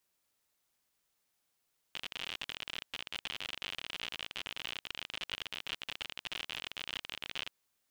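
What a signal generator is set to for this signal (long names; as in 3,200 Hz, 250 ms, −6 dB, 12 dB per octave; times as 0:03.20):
Geiger counter clicks 60 per second −23 dBFS 5.55 s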